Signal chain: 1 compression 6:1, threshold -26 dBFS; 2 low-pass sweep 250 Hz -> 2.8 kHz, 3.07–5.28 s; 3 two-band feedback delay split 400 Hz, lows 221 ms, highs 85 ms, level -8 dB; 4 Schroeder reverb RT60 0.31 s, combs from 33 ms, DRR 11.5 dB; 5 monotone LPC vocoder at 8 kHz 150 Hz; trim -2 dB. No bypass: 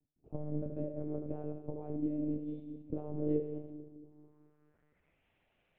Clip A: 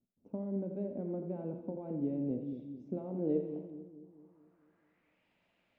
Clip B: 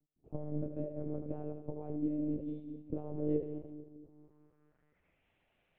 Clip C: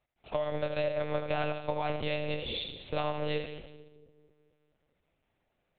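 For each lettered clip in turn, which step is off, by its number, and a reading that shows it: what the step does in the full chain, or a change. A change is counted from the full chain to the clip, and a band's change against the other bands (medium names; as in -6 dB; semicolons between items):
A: 5, 125 Hz band -2.0 dB; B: 4, momentary loudness spread change -1 LU; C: 2, 1 kHz band +17.0 dB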